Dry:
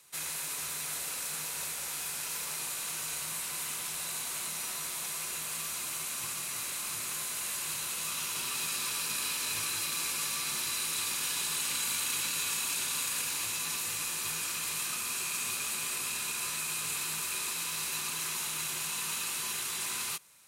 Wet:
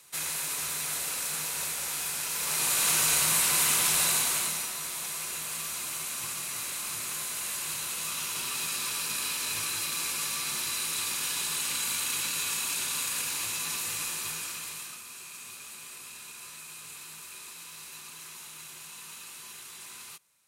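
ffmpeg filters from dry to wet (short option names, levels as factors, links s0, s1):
-af "volume=3.98,afade=t=in:st=2.35:d=0.54:silence=0.398107,afade=t=out:st=4.02:d=0.68:silence=0.298538,afade=t=out:st=14.04:d=0.99:silence=0.266073"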